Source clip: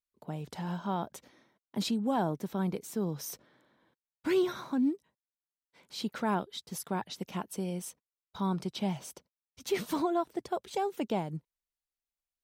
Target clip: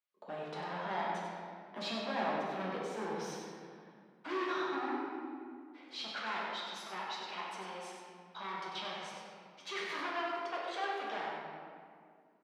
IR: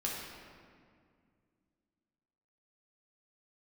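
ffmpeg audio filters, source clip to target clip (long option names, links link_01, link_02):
-filter_complex "[0:a]flanger=delay=1.5:depth=7:regen=-89:speed=0.52:shape=sinusoidal,asoftclip=type=hard:threshold=-39.5dB,asetnsamples=nb_out_samples=441:pad=0,asendcmd='6.01 highpass f 790',highpass=470,lowpass=3400,aecho=1:1:96:0.473[link_01];[1:a]atrim=start_sample=2205[link_02];[link_01][link_02]afir=irnorm=-1:irlink=0,volume=7dB"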